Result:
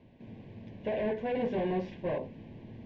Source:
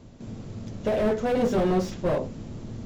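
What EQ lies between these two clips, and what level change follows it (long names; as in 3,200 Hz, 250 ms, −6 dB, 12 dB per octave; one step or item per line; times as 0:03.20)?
Butterworth band-reject 1,300 Hz, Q 2.6
transistor ladder low-pass 3,200 Hz, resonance 35%
low-shelf EQ 68 Hz −12 dB
0.0 dB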